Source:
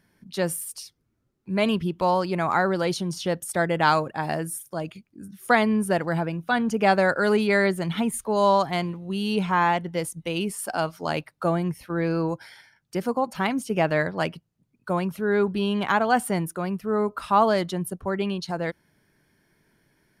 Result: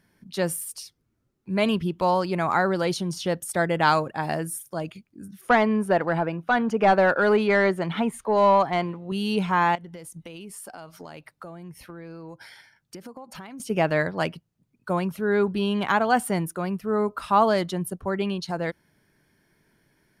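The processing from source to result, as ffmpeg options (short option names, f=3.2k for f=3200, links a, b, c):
-filter_complex "[0:a]asettb=1/sr,asplit=3[a][b][c];[a]atrim=end=5.414[d];[b]atrim=start=5.41:end=9.12,asetpts=PTS-STARTPTS,afade=t=in:d=0.004:c=qsin,afade=t=out:st=3.706:d=0.004:c=qsin,asplit=2[e][f];[f]highpass=f=720:p=1,volume=13dB,asoftclip=type=tanh:threshold=-6.5dB[g];[e][g]amix=inputs=2:normalize=0,lowpass=f=1.1k:p=1,volume=-6dB[h];[c]atrim=start=9.116[i];[d][h]acrossfade=d=0.004:c1=hsin:c2=qsin[j];[j][i]acrossfade=d=0.004:c1=qsin:c2=hsin,asettb=1/sr,asplit=3[k][l][m];[k]atrim=end=9.754[n];[l]atrim=start=9.75:end=13.6,asetpts=PTS-STARTPTS,afade=t=in:d=0.004:c=qsin,afade=t=out:st=3.846:d=0.004:c=qsin,acompressor=threshold=-36dB:ratio=16:attack=3.2:release=140:knee=1:detection=peak[o];[m]atrim=start=13.596[p];[n][o]acrossfade=d=0.004:c1=hsin:c2=qsin[q];[q][p]acrossfade=d=0.004:c1=qsin:c2=hsin"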